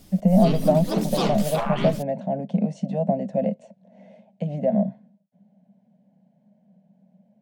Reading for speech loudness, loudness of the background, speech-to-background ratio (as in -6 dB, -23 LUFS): -23.5 LUFS, -28.0 LUFS, 4.5 dB